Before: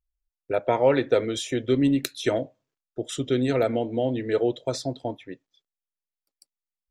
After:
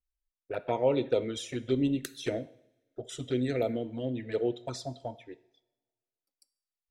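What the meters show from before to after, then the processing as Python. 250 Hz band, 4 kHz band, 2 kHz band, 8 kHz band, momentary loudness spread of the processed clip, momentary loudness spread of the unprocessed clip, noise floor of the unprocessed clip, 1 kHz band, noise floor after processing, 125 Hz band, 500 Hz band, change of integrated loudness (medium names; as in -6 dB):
-6.5 dB, -7.5 dB, -9.0 dB, -7.5 dB, 15 LU, 14 LU, under -85 dBFS, -8.5 dB, under -85 dBFS, -6.0 dB, -7.0 dB, -7.0 dB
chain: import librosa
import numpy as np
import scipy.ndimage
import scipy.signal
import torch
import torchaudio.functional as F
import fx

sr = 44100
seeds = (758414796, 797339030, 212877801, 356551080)

y = fx.env_flanger(x, sr, rest_ms=3.9, full_db=-17.5)
y = fx.rev_double_slope(y, sr, seeds[0], early_s=0.63, late_s=1.7, knee_db=-20, drr_db=14.5)
y = y * 10.0 ** (-5.0 / 20.0)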